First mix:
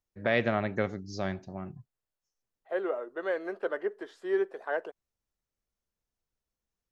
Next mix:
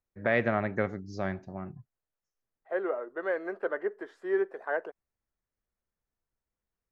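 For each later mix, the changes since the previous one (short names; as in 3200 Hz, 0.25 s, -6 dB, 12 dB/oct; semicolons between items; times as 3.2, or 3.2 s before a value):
master: add resonant high shelf 2500 Hz -6.5 dB, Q 1.5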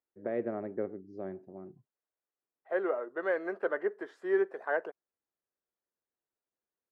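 first voice: add band-pass 370 Hz, Q 2.2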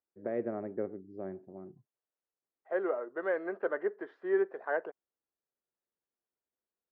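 master: add air absorption 300 m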